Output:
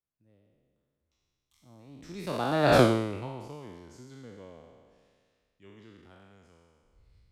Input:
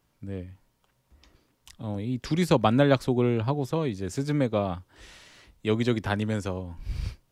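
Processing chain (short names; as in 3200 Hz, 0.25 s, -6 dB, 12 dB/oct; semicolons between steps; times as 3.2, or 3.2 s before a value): spectral trails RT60 1.90 s; Doppler pass-by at 2.79, 33 m/s, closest 2.2 m; gain +2 dB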